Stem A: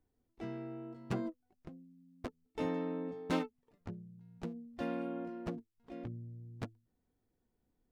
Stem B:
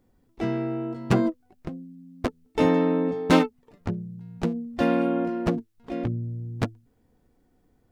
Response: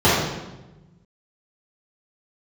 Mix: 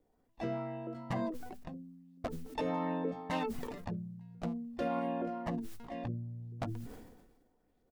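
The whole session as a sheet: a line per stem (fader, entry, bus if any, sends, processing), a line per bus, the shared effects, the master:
-0.5 dB, 0.00 s, no send, peaking EQ 650 Hz +9.5 dB 1.4 oct; LFO low-pass saw up 2.3 Hz 420–5500 Hz
-10.5 dB, 1.2 ms, no send, peaking EQ 97 Hz -6.5 dB 1.7 oct; decay stretcher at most 45 dB/s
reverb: none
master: hum notches 50/100/150/200/250 Hz; peak limiter -25.5 dBFS, peak gain reduction 9 dB

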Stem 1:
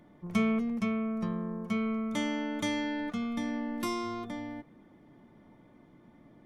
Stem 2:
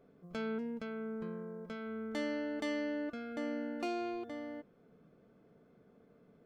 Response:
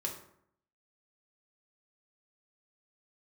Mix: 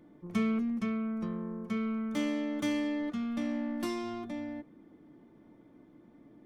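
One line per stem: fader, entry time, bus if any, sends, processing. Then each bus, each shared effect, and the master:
-5.5 dB, 0.00 s, no send, peaking EQ 310 Hz +9.5 dB 0.7 oct
-4.5 dB, 0.00 s, polarity flipped, no send, self-modulated delay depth 0.45 ms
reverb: none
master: none

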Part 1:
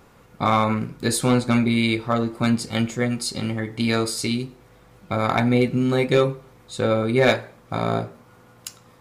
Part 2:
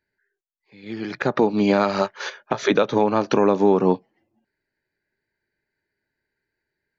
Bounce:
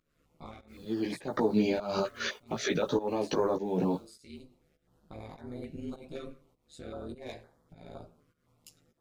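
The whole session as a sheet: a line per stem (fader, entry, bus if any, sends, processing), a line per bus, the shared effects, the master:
-11.0 dB, 0.00 s, no send, peak limiter -12 dBFS, peak gain reduction 4.5 dB; AM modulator 150 Hz, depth 80%; auto duck -10 dB, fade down 0.30 s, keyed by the second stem
+0.5 dB, 0.00 s, no send, peak limiter -15 dBFS, peak gain reduction 8.5 dB; bit crusher 10-bit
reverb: none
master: volume shaper 101 bpm, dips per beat 1, -17 dB, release 255 ms; chorus voices 6, 0.92 Hz, delay 15 ms, depth 3.6 ms; step-sequenced notch 3.9 Hz 850–2600 Hz

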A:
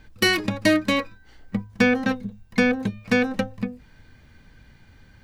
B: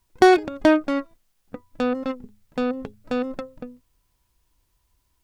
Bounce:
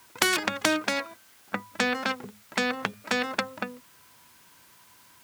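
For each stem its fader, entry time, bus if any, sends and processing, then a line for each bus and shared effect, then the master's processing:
-12.0 dB, 0.00 s, no send, none
+2.0 dB, 0.00 s, no send, high-pass 640 Hz 6 dB/octave; band-stop 1.8 kHz, Q 24; spectrum-flattening compressor 4:1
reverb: none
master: high-pass 140 Hz 12 dB/octave; peaking EQ 1.5 kHz +5 dB 1.5 oct

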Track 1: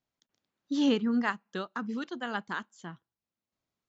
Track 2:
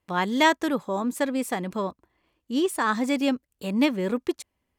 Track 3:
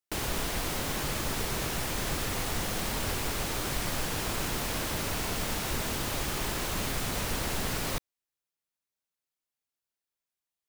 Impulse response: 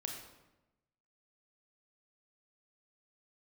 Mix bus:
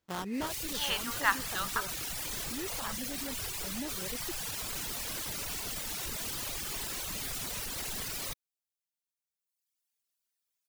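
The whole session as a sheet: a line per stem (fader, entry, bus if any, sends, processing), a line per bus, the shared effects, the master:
+3.0 dB, 0.00 s, muted 1.81–2.83 s, no bus, send -12 dB, high-pass 840 Hz 24 dB/octave
-7.0 dB, 0.00 s, bus A, no send, sample-rate reducer 2.3 kHz, jitter 20%
-1.5 dB, 0.35 s, bus A, no send, treble shelf 2.4 kHz +11 dB
bus A: 0.0 dB, reverb removal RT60 1.3 s; peak limiter -28 dBFS, peak gain reduction 15 dB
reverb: on, RT60 1.0 s, pre-delay 27 ms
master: none

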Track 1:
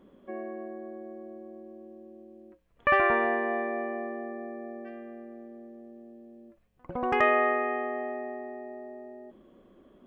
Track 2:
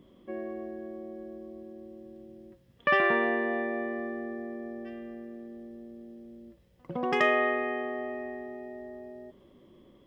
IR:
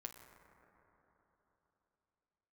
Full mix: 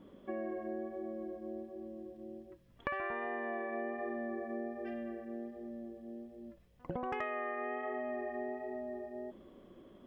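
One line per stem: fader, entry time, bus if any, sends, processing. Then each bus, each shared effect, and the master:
-1.0 dB, 0.00 s, no send, vibrato 1.3 Hz 25 cents
-9.0 dB, 0.00 s, polarity flipped, no send, compressor with a negative ratio -35 dBFS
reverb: none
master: compression 8:1, threshold -35 dBFS, peak gain reduction 16 dB

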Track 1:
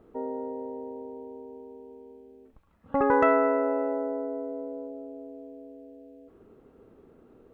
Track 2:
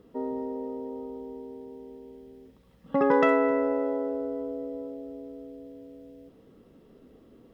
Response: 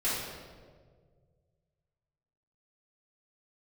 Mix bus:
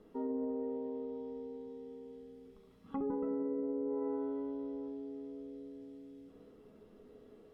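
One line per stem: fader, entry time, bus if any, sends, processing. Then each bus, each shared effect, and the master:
-0.5 dB, 0.00 s, no send, none
+0.5 dB, 0.00 s, send -9.5 dB, bass shelf 260 Hz -4 dB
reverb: on, RT60 1.7 s, pre-delay 3 ms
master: low-pass that closes with the level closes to 350 Hz, closed at -18 dBFS; feedback comb 210 Hz, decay 0.38 s, harmonics all, mix 70%; peak limiter -29 dBFS, peak gain reduction 7 dB

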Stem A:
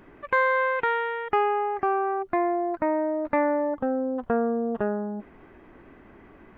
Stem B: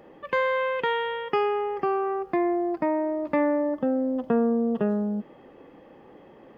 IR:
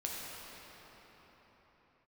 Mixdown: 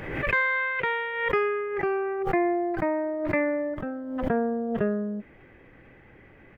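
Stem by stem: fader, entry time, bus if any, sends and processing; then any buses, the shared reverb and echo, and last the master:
-2.5 dB, 0.00 s, no send, graphic EQ 125/250/500/1000/2000 Hz +8/-6/-3/-11/+9 dB
-2.0 dB, 1.2 ms, no send, low-pass 2.7 kHz 6 dB/octave; upward expansion 1.5:1, over -33 dBFS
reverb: none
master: swell ahead of each attack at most 50 dB/s

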